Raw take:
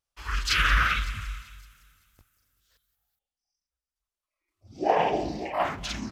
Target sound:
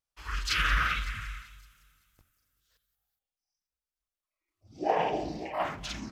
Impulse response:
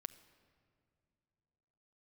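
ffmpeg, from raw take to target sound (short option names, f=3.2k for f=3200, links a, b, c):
-filter_complex "[0:a]asettb=1/sr,asplit=3[a][b][c];[a]atrim=end=1.064[d];[b]atrim=start=1.06:end=1.47,asetpts=PTS-STARTPTS,afade=t=in:d=0.004:c=qsin,afade=t=out:st=0.406:d=0.004:c=qsin,equalizer=f=1.8k:w=1.6:g=6.5[e];[c]atrim=start=1.466[f];[d][e]acrossfade=d=0.004:c1=hsin:c2=qsin[g];[g][f]acrossfade=d=0.004:c1=qsin:c2=hsin[h];[1:a]atrim=start_sample=2205,atrim=end_sample=4410[i];[h][i]afir=irnorm=-1:irlink=0"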